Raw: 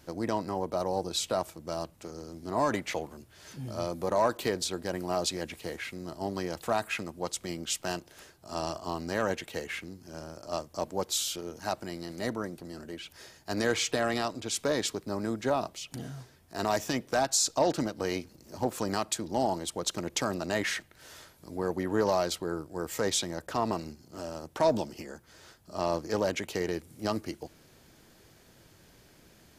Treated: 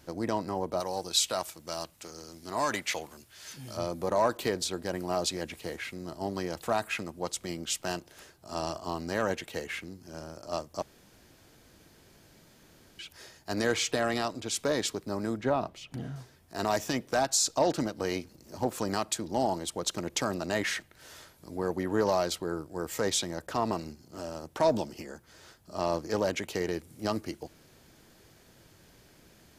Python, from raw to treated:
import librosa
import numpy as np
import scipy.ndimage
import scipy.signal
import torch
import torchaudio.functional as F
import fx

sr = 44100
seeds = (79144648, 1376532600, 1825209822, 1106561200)

y = fx.tilt_shelf(x, sr, db=-6.5, hz=1100.0, at=(0.8, 3.77))
y = fx.bass_treble(y, sr, bass_db=3, treble_db=-11, at=(15.37, 16.16))
y = fx.edit(y, sr, fx.room_tone_fill(start_s=10.82, length_s=2.17), tone=tone)